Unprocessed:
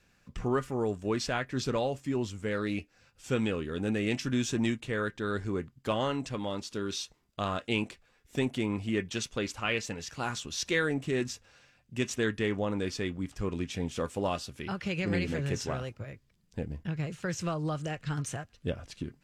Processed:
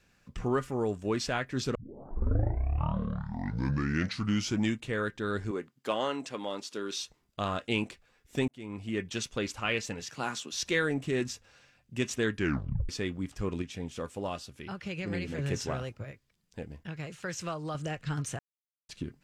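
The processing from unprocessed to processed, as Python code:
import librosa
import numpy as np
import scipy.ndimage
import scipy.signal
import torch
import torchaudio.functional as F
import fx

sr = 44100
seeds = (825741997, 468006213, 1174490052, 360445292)

y = fx.highpass(x, sr, hz=280.0, slope=12, at=(5.51, 6.97))
y = fx.highpass(y, sr, hz=fx.line((10.0, 88.0), (10.52, 220.0)), slope=24, at=(10.0, 10.52), fade=0.02)
y = fx.low_shelf(y, sr, hz=380.0, db=-8.0, at=(16.11, 17.75))
y = fx.edit(y, sr, fx.tape_start(start_s=1.75, length_s=3.06),
    fx.fade_in_span(start_s=8.48, length_s=0.91, curve='qsin'),
    fx.tape_stop(start_s=12.36, length_s=0.53),
    fx.clip_gain(start_s=13.62, length_s=1.76, db=-4.5),
    fx.silence(start_s=18.39, length_s=0.5), tone=tone)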